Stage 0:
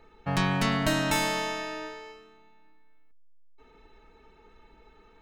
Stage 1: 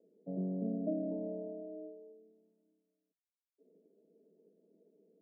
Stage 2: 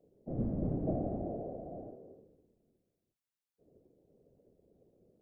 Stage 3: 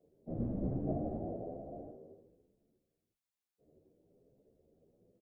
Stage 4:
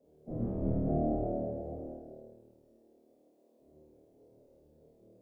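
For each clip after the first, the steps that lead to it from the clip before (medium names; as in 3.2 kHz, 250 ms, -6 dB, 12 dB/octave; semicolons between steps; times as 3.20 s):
Chebyshev band-pass 170–630 Hz, order 5; trim -6 dB
octave divider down 1 oct, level 0 dB; whisper effect
endless flanger 11.1 ms +1.1 Hz; trim +1 dB
band noise 230–600 Hz -71 dBFS; flutter echo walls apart 4.5 m, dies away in 1.1 s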